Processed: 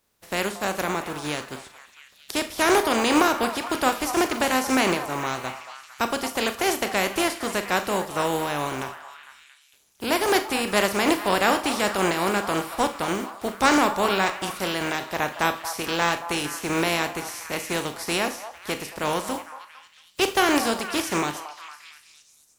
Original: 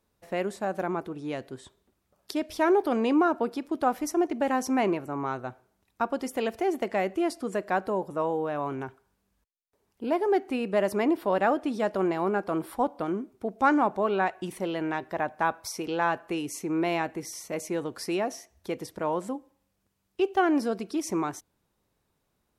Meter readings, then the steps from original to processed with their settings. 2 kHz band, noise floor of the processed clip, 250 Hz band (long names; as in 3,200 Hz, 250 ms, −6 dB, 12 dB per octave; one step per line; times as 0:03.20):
+9.5 dB, −57 dBFS, +1.5 dB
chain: compressing power law on the bin magnitudes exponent 0.48
echo through a band-pass that steps 227 ms, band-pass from 870 Hz, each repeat 0.7 octaves, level −8.5 dB
four-comb reverb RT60 0.33 s, combs from 27 ms, DRR 9.5 dB
level +3 dB